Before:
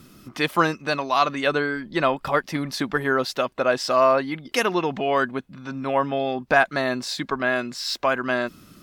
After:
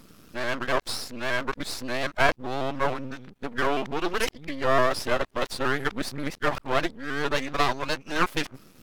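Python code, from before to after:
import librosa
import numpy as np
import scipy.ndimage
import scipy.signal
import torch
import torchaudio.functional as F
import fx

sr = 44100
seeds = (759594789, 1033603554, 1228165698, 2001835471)

y = x[::-1].copy()
y = np.maximum(y, 0.0)
y = fx.vibrato_shape(y, sr, shape='saw_up', rate_hz=6.9, depth_cents=100.0)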